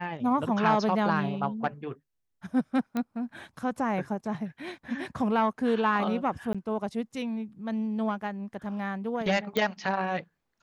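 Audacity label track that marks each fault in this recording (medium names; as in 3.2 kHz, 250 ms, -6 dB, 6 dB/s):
2.970000	2.970000	pop -18 dBFS
6.530000	6.550000	dropout 16 ms
9.570000	9.570000	pop -14 dBFS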